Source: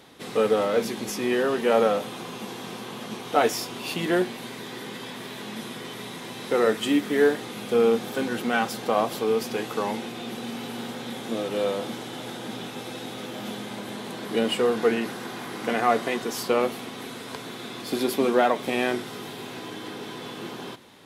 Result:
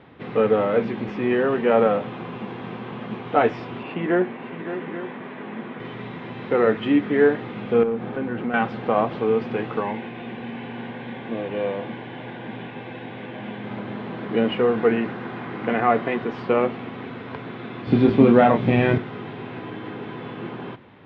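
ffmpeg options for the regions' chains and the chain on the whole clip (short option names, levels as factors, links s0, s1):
-filter_complex "[0:a]asettb=1/sr,asplit=3[s0][s1][s2];[s0]atrim=end=3.834[s3];[s1]atrim=start=3.83:end=5.8,asetpts=PTS-STARTPTS,afade=t=in:d=0.004:c=qsin,afade=t=out:st=1.966:d=0.004:c=qsin,highpass=190,lowpass=2600,aecho=1:1:563|836:0.282|0.211,atrim=end_sample=86877[s4];[s2]atrim=start=5.796[s5];[s3][s4]acrossfade=d=0.004:c1=hsin:c2=qsin[s6];[s6][s5]acrossfade=d=0.004:c1=qsin:c2=hsin,asettb=1/sr,asplit=3[s7][s8][s9];[s7]atrim=end=7.834[s10];[s8]atrim=start=7.83:end=8.54,asetpts=PTS-STARTPTS,afade=t=in:d=0.004:c=qsin,afade=t=out:st=0.706:d=0.004:c=qsin,aemphasis=mode=reproduction:type=75fm,acompressor=threshold=0.0355:ratio=2:attack=3.2:release=140:knee=1:detection=peak,asoftclip=type=hard:threshold=0.0841[s11];[s9]atrim=start=8.536[s12];[s10][s11]acrossfade=d=0.004:c1=hsin:c2=qsin[s13];[s13][s12]acrossfade=d=0.004:c1=qsin:c2=hsin,asettb=1/sr,asplit=3[s14][s15][s16];[s14]atrim=end=9.804[s17];[s15]atrim=start=9.8:end=13.64,asetpts=PTS-STARTPTS,afade=t=in:d=0.004:c=qsin,afade=t=out:st=3.836:d=0.004:c=qsin,acrossover=split=3400[s18][s19];[s19]acompressor=threshold=0.00141:ratio=4:attack=1:release=60[s20];[s18][s20]amix=inputs=2:normalize=0,asuperstop=centerf=1300:order=4:qfactor=6.1,tiltshelf=f=1100:g=-4[s21];[s16]atrim=start=13.636[s22];[s17][s21]acrossfade=d=0.004:c1=hsin:c2=qsin[s23];[s23][s22]acrossfade=d=0.004:c1=qsin:c2=hsin,asettb=1/sr,asplit=3[s24][s25][s26];[s24]atrim=end=17.874[s27];[s25]atrim=start=17.87:end=18.98,asetpts=PTS-STARTPTS,afade=t=in:d=0.004:c=qsin,afade=t=out:st=1.106:d=0.004:c=qsin,acrossover=split=4500[s28][s29];[s29]acompressor=threshold=0.00708:ratio=4:attack=1:release=60[s30];[s28][s30]amix=inputs=2:normalize=0,bass=f=250:g=14,treble=f=4000:g=10,asplit=2[s31][s32];[s32]adelay=26,volume=0.501[s33];[s31][s33]amix=inputs=2:normalize=0,atrim=end_sample=48951[s34];[s26]atrim=start=18.976[s35];[s27][s34]acrossfade=d=0.004:c1=hsin:c2=qsin[s36];[s36][s35]acrossfade=d=0.004:c1=qsin:c2=hsin,lowpass=f=2600:w=0.5412,lowpass=f=2600:w=1.3066,equalizer=f=97:t=o:w=1.8:g=8,volume=1.26"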